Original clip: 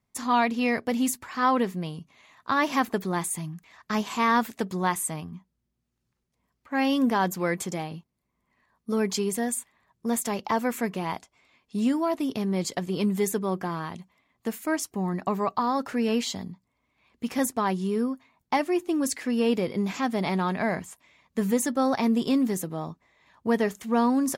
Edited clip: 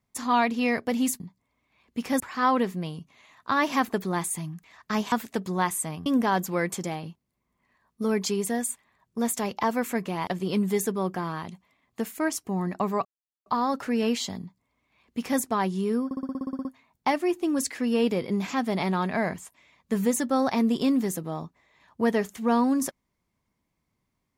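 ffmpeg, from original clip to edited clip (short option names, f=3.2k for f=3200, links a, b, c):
-filter_complex "[0:a]asplit=17[a][b][c][d][e][f][g][h][i][j][k][l][m][n][o][p][q];[a]atrim=end=1.202[r];[b]atrim=start=16.458:end=17.462[s];[c]atrim=start=1.198:end=4.122[t];[d]atrim=start=4.368:end=5.312[u];[e]atrim=start=6.938:end=11.152[v];[f]atrim=start=12.738:end=15.52,asetpts=PTS-STARTPTS,afade=t=out:st=2.778:d=0.004:c=hsin,apad=pad_dur=0.41[w];[g]atrim=start=15.52:end=18.172,asetpts=PTS-STARTPTS,afade=t=in:d=0.004:c=hsin[x];[h]atrim=start=18.108:end=18.172[y];[i]atrim=start=18.108:end=18.172[z];[j]atrim=start=18.108:end=18.172[aa];[k]atrim=start=18.108:end=18.172[ab];[l]atrim=start=18.108:end=18.172[ac];[m]atrim=start=18.108:end=18.172[ad];[n]atrim=start=18.108:end=18.172[ae];[o]atrim=start=18.108:end=18.172[af];[p]atrim=start=18.108:end=18.172[ag];[q]atrim=start=18.108[ah];[r][s]acrossfade=d=0.004:c1=hsin:c2=hsin[ai];[ai][t]acrossfade=d=0.004:c1=hsin:c2=hsin[aj];[aj][u]acrossfade=d=0.004:c1=hsin:c2=hsin[ak];[ak][v]acrossfade=d=0.004:c1=hsin:c2=hsin[al];[w][x]concat=n=2:v=0:a=1[am];[al][am]acrossfade=d=0.004:c1=hsin:c2=hsin[an];[an][y]acrossfade=d=0.004:c1=hsin:c2=hsin[ao];[ao][z]acrossfade=d=0.004:c1=hsin:c2=hsin[ap];[ap][aa]acrossfade=d=0.004:c1=hsin:c2=hsin[aq];[aq][ab]acrossfade=d=0.004:c1=hsin:c2=hsin[ar];[ar][ac]acrossfade=d=0.004:c1=hsin:c2=hsin[as];[as][ad]acrossfade=d=0.004:c1=hsin:c2=hsin[at];[at][ae]acrossfade=d=0.004:c1=hsin:c2=hsin[au];[au][af]acrossfade=d=0.004:c1=hsin:c2=hsin[av];[av][ag]acrossfade=d=0.004:c1=hsin:c2=hsin[aw];[aw][ah]acrossfade=d=0.004:c1=hsin:c2=hsin"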